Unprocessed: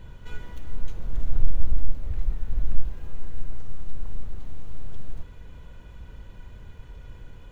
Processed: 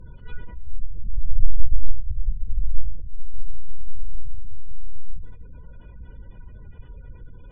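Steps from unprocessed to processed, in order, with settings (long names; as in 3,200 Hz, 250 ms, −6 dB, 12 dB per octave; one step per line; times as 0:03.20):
gate on every frequency bin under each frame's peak −30 dB strong
four-comb reverb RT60 0.87 s, combs from 27 ms, DRR 19 dB
treble cut that deepens with the level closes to 350 Hz, closed at −10.5 dBFS
level +1.5 dB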